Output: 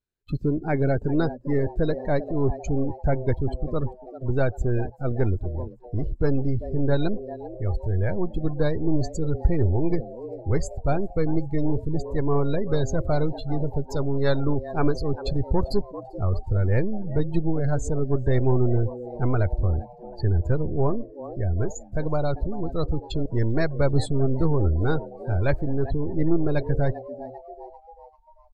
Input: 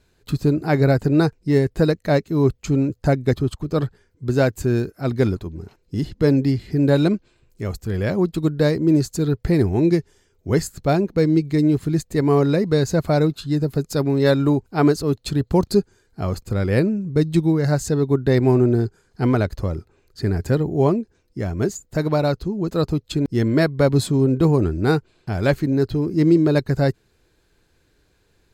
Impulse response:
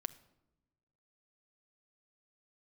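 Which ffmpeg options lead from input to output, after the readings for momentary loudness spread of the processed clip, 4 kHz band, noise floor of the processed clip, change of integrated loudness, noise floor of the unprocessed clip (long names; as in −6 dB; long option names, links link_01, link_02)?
7 LU, −9.5 dB, −47 dBFS, −6.0 dB, −63 dBFS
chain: -filter_complex "[0:a]aeval=exprs='if(lt(val(0),0),0.708*val(0),val(0))':channel_layout=same,asplit=7[link_01][link_02][link_03][link_04][link_05][link_06][link_07];[link_02]adelay=393,afreqshift=120,volume=-14.5dB[link_08];[link_03]adelay=786,afreqshift=240,volume=-19.4dB[link_09];[link_04]adelay=1179,afreqshift=360,volume=-24.3dB[link_10];[link_05]adelay=1572,afreqshift=480,volume=-29.1dB[link_11];[link_06]adelay=1965,afreqshift=600,volume=-34dB[link_12];[link_07]adelay=2358,afreqshift=720,volume=-38.9dB[link_13];[link_01][link_08][link_09][link_10][link_11][link_12][link_13]amix=inputs=7:normalize=0,asubboost=boost=7.5:cutoff=72,asplit=2[link_14][link_15];[link_15]aeval=exprs='0.0944*(abs(mod(val(0)/0.0944+3,4)-2)-1)':channel_layout=same,volume=-11dB[link_16];[link_14][link_16]amix=inputs=2:normalize=0,afftdn=noise_reduction=26:noise_floor=-29,volume=-4dB"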